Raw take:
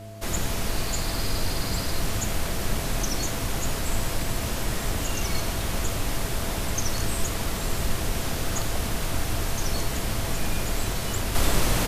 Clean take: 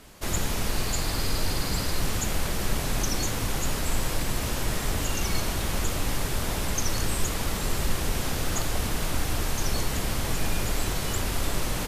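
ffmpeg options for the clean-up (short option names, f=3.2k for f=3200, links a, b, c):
-af "bandreject=f=104.7:t=h:w=4,bandreject=f=209.4:t=h:w=4,bandreject=f=314.1:t=h:w=4,bandreject=f=418.8:t=h:w=4,bandreject=f=523.5:t=h:w=4,bandreject=f=670:w=30,asetnsamples=n=441:p=0,asendcmd='11.35 volume volume -5.5dB',volume=0dB"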